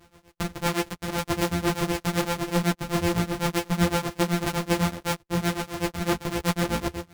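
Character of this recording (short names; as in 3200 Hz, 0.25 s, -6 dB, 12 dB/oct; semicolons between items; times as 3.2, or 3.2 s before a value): a buzz of ramps at a fixed pitch in blocks of 256 samples; tremolo triangle 7.9 Hz, depth 100%; a shimmering, thickened sound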